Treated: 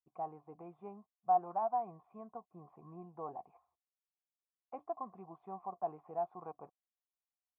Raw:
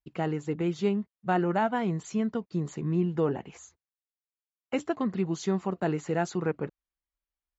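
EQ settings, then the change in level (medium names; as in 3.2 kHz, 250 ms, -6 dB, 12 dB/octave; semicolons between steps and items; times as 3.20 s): cascade formant filter a; +1.5 dB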